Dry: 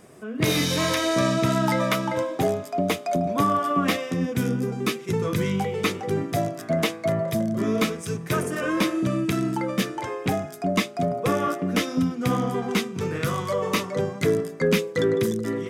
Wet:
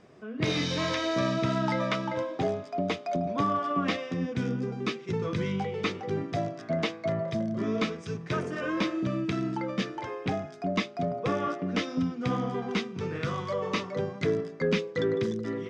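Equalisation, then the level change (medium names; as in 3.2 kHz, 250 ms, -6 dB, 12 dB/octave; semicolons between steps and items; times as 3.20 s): low-pass 5.5 kHz 24 dB/octave; -5.5 dB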